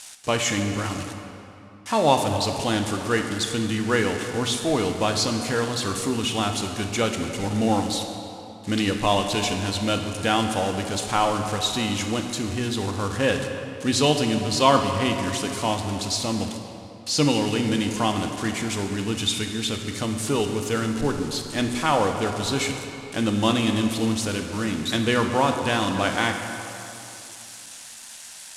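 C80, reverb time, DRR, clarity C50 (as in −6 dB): 6.5 dB, 2.9 s, 4.0 dB, 5.5 dB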